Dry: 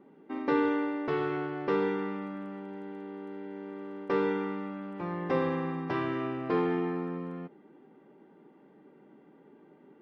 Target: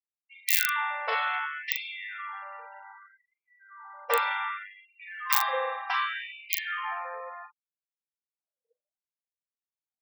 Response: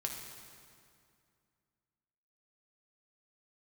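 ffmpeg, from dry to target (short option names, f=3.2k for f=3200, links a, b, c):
-filter_complex "[0:a]asplit=2[a][b];[1:a]atrim=start_sample=2205[c];[b][c]afir=irnorm=-1:irlink=0,volume=-16.5dB[d];[a][d]amix=inputs=2:normalize=0,adynamicequalizer=threshold=0.00355:dfrequency=2700:dqfactor=1.3:tfrequency=2700:tqfactor=1.3:attack=5:release=100:ratio=0.375:range=2:mode=boostabove:tftype=bell,asplit=2[e][f];[f]aeval=exprs='(mod(6.68*val(0)+1,2)-1)/6.68':c=same,volume=-5dB[g];[e][g]amix=inputs=2:normalize=0,aemphasis=mode=production:type=bsi,afftfilt=real='re*gte(hypot(re,im),0.01)':imag='im*gte(hypot(re,im),0.01)':win_size=1024:overlap=0.75,aeval=exprs='0.891*(cos(1*acos(clip(val(0)/0.891,-1,1)))-cos(1*PI/2))+0.02*(cos(6*acos(clip(val(0)/0.891,-1,1)))-cos(6*PI/2))':c=same,asplit=2[h][i];[i]adelay=40,volume=-5.5dB[j];[h][j]amix=inputs=2:normalize=0,afftfilt=real='re*gte(b*sr/1024,470*pow(2100/470,0.5+0.5*sin(2*PI*0.66*pts/sr)))':imag='im*gte(b*sr/1024,470*pow(2100/470,0.5+0.5*sin(2*PI*0.66*pts/sr)))':win_size=1024:overlap=0.75,volume=1dB"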